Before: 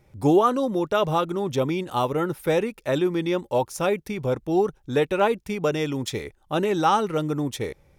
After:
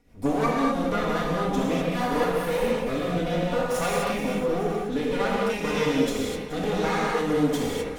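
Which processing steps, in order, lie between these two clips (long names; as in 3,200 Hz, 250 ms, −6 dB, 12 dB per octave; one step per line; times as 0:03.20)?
lower of the sound and its delayed copy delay 4.1 ms
downward compressor, threshold −24 dBFS, peak gain reduction 9 dB
rotating-speaker cabinet horn 6.3 Hz, later 0.6 Hz, at 0:01.15
on a send: delay that swaps between a low-pass and a high-pass 214 ms, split 1,100 Hz, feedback 77%, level −12 dB
on the sum: reverb whose tail is shaped and stops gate 280 ms flat, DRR −5 dB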